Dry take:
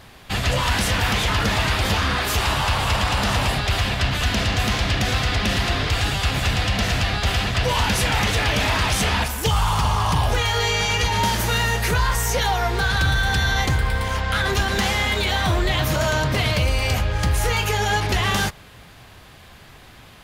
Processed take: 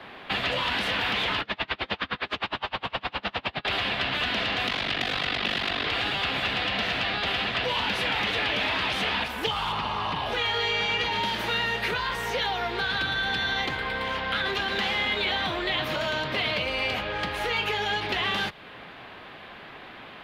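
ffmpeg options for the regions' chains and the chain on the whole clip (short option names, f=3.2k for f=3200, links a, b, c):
-filter_complex "[0:a]asettb=1/sr,asplit=3[a][b][c];[a]atrim=end=1.414[d];[b]atrim=start=1.41:end=3.65,asetpts=PTS-STARTPTS,afade=t=in:d=0.004:c=qsin,afade=t=out:st=2.236:d=0.004:c=qsin,lowpass=5.2k,aeval=exprs='val(0)*pow(10,-35*(0.5-0.5*cos(2*PI*9.7*n/s))/20)':c=same[e];[c]atrim=start=3.646[f];[d][e]acrossfade=d=0.004:c1=hsin:c2=qsin[g];[g][f]acrossfade=d=0.004:c1=qsin:c2=hsin,asettb=1/sr,asplit=3[h][i][j];[h]atrim=end=4.674[k];[i]atrim=start=4.67:end=5.85,asetpts=PTS-STARTPTS,afade=t=in:d=0.004:c=qsin,afade=t=out:st=1.176:d=0.004:c=qsin,equalizer=f=8.9k:w=0.33:g=5.5,aeval=exprs='val(0)*sin(2*PI*24*n/s)':c=same[l];[j]atrim=start=5.846[m];[k][l]acrossfade=d=0.004:c1=hsin:c2=qsin[n];[n][m]acrossfade=d=0.004:c1=qsin:c2=hsin,asettb=1/sr,asplit=3[o][p][q];[o]atrim=end=9.724[r];[p]atrim=start=9.72:end=10.26,asetpts=PTS-STARTPTS,afade=t=in:d=0.004:c=qsin,afade=t=out:st=0.536:d=0.004:c=qsin,acrossover=split=4200[s][t];[t]acompressor=threshold=-42dB:ratio=4:attack=1:release=60[u];[s][u]amix=inputs=2:normalize=0,bandreject=f=3.3k:w=18[v];[q]atrim=start=10.256[w];[r][v]acrossfade=d=0.004:c1=hsin:c2=qsin[x];[x][w]acrossfade=d=0.004:c1=qsin:c2=hsin,acrossover=split=200 3100:gain=0.112 1 0.224[y][z][aa];[y][z][aa]amix=inputs=3:normalize=0,acrossover=split=140|380|2900[ab][ac][ad][ae];[ab]acompressor=threshold=-48dB:ratio=4[af];[ac]acompressor=threshold=-45dB:ratio=4[ag];[ad]acompressor=threshold=-36dB:ratio=4[ah];[ae]acompressor=threshold=-34dB:ratio=4[ai];[af][ag][ah][ai]amix=inputs=4:normalize=0,highshelf=f=5.1k:t=q:w=1.5:g=-9.5,volume=4.5dB"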